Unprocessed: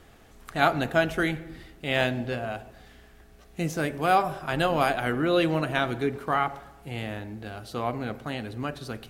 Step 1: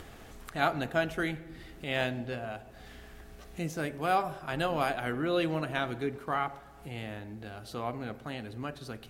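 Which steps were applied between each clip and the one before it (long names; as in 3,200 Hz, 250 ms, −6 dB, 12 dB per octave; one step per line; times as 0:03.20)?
upward compression, threshold −32 dBFS
level −6 dB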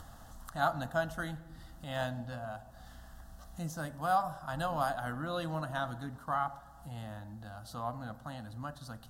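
phaser with its sweep stopped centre 970 Hz, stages 4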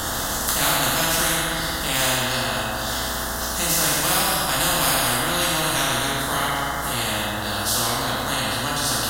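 dense smooth reverb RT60 1.3 s, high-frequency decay 0.8×, DRR −8.5 dB
every bin compressed towards the loudest bin 4 to 1
level +5 dB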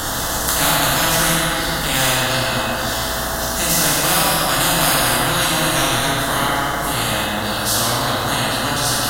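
rectangular room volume 180 cubic metres, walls hard, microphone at 0.3 metres
level +3 dB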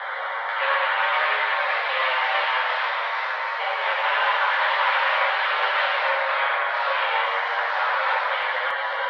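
single-sideband voice off tune +260 Hz 280–2,700 Hz
multi-voice chorus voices 4, 0.51 Hz, delay 10 ms, depth 1.1 ms
delay with pitch and tempo change per echo 603 ms, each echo +2 semitones, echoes 3, each echo −6 dB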